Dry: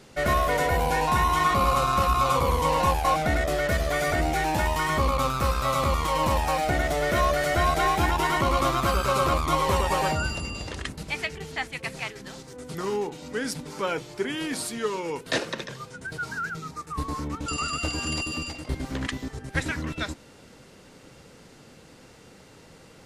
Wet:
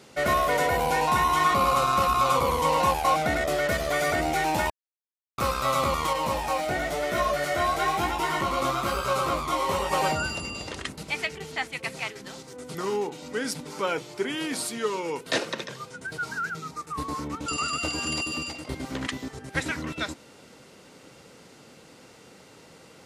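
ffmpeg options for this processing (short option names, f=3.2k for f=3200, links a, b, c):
-filter_complex "[0:a]asettb=1/sr,asplit=3[a][b][c];[a]atrim=end=6.134[d];[b]atrim=start=6.13:end=9.93,asetpts=PTS-STARTPTS,afade=t=in:d=0.004:c=qsin,afade=t=out:st=3.796:d=0.004:c=qsin,flanger=delay=16.5:depth=6.2:speed=1[e];[c]atrim=start=9.926[f];[d][e]acrossfade=d=0.004:c1=hsin:c2=qsin[g];[g][f]acrossfade=d=0.004:c1=qsin:c2=hsin,asplit=3[h][i][j];[h]atrim=end=4.7,asetpts=PTS-STARTPTS,afade=t=out:st=4.696:d=0.004:c=hsin[k];[i]atrim=start=4.7:end=5.38,asetpts=PTS-STARTPTS,volume=0[l];[j]atrim=start=5.38,asetpts=PTS-STARTPTS,afade=t=in:d=0.004:c=hsin[m];[k][l][m]concat=n=3:v=0:a=1,highpass=f=190:p=1,bandreject=f=1.7k:w=17,acontrast=53,volume=-5dB"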